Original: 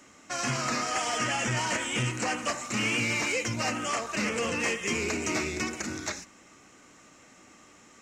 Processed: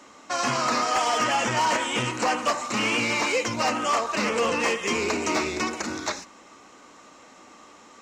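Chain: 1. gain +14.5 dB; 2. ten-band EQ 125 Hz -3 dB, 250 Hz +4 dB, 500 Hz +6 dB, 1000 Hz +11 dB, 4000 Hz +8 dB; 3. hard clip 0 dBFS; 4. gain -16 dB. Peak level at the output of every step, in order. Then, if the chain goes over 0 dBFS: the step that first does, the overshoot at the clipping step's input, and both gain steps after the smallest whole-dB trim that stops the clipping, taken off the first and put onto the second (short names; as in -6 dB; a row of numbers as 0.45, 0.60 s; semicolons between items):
-2.0, +5.0, 0.0, -16.0 dBFS; step 2, 5.0 dB; step 1 +9.5 dB, step 4 -11 dB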